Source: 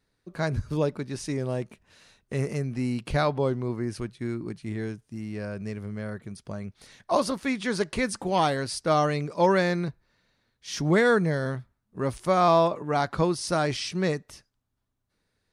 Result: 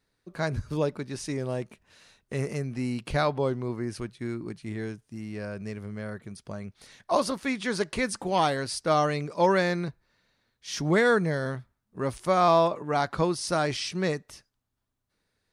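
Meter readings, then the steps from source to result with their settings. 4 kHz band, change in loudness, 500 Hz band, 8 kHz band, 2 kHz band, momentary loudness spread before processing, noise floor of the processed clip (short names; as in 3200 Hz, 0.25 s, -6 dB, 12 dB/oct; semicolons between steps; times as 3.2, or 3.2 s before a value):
0.0 dB, -1.0 dB, -1.0 dB, 0.0 dB, 0.0 dB, 15 LU, -79 dBFS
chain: low shelf 350 Hz -3 dB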